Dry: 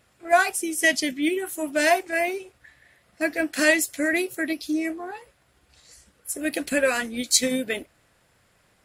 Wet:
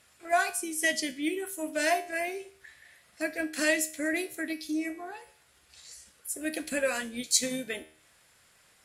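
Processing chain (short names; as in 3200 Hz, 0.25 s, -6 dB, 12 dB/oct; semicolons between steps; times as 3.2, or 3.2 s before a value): Bessel low-pass 11000 Hz, order 2; high shelf 6500 Hz +7.5 dB; resonator 78 Hz, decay 0.46 s, harmonics all, mix 60%; mismatched tape noise reduction encoder only; gain -2 dB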